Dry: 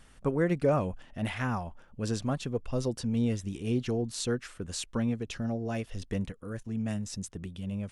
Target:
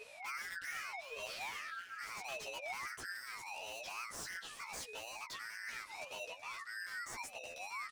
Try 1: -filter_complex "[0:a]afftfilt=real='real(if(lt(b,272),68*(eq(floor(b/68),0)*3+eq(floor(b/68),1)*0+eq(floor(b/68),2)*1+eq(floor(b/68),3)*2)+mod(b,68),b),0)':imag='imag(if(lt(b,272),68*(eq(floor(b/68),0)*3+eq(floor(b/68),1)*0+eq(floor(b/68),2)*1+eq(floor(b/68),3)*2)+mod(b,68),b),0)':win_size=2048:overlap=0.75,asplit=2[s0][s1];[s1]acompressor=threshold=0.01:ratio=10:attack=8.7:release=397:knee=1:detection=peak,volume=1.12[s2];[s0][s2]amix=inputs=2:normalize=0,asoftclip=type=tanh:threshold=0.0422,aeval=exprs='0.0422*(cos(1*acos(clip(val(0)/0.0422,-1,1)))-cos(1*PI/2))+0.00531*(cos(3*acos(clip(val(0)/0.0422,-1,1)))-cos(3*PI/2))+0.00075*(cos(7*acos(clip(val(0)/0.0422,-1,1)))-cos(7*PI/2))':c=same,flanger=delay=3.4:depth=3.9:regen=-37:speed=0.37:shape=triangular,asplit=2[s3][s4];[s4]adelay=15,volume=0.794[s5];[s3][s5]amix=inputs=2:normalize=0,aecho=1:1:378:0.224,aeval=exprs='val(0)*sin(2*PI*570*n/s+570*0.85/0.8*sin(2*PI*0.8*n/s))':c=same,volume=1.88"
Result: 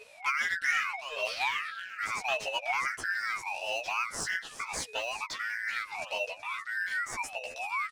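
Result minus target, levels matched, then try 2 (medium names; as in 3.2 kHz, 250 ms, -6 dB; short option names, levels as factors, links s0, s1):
saturation: distortion -7 dB
-filter_complex "[0:a]afftfilt=real='real(if(lt(b,272),68*(eq(floor(b/68),0)*3+eq(floor(b/68),1)*0+eq(floor(b/68),2)*1+eq(floor(b/68),3)*2)+mod(b,68),b),0)':imag='imag(if(lt(b,272),68*(eq(floor(b/68),0)*3+eq(floor(b/68),1)*0+eq(floor(b/68),2)*1+eq(floor(b/68),3)*2)+mod(b,68),b),0)':win_size=2048:overlap=0.75,asplit=2[s0][s1];[s1]acompressor=threshold=0.01:ratio=10:attack=8.7:release=397:knee=1:detection=peak,volume=1.12[s2];[s0][s2]amix=inputs=2:normalize=0,asoftclip=type=tanh:threshold=0.0106,aeval=exprs='0.0422*(cos(1*acos(clip(val(0)/0.0422,-1,1)))-cos(1*PI/2))+0.00531*(cos(3*acos(clip(val(0)/0.0422,-1,1)))-cos(3*PI/2))+0.00075*(cos(7*acos(clip(val(0)/0.0422,-1,1)))-cos(7*PI/2))':c=same,flanger=delay=3.4:depth=3.9:regen=-37:speed=0.37:shape=triangular,asplit=2[s3][s4];[s4]adelay=15,volume=0.794[s5];[s3][s5]amix=inputs=2:normalize=0,aecho=1:1:378:0.224,aeval=exprs='val(0)*sin(2*PI*570*n/s+570*0.85/0.8*sin(2*PI*0.8*n/s))':c=same,volume=1.88"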